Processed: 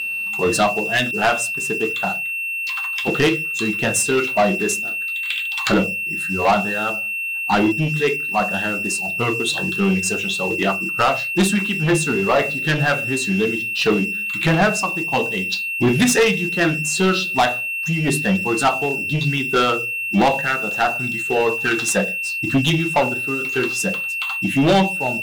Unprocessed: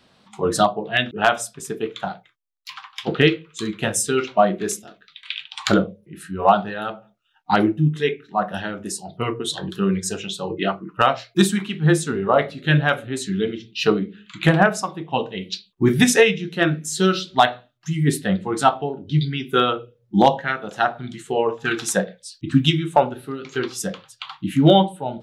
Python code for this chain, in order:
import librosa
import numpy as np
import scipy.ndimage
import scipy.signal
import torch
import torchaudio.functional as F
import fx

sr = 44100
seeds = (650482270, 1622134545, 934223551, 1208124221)

y = x + 10.0 ** (-26.0 / 20.0) * np.sin(2.0 * np.pi * 2700.0 * np.arange(len(x)) / sr)
y = fx.leveller(y, sr, passes=3)
y = fx.hum_notches(y, sr, base_hz=50, count=3)
y = y * librosa.db_to_amplitude(-7.5)